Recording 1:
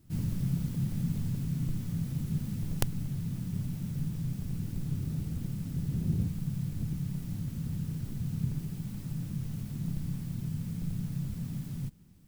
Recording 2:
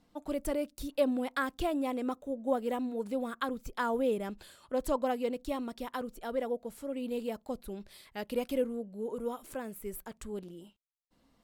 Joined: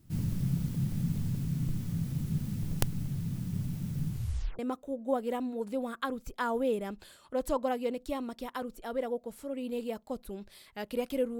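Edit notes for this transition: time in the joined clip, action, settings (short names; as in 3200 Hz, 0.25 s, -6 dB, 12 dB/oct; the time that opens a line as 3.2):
recording 1
4.08 tape stop 0.51 s
4.59 switch to recording 2 from 1.98 s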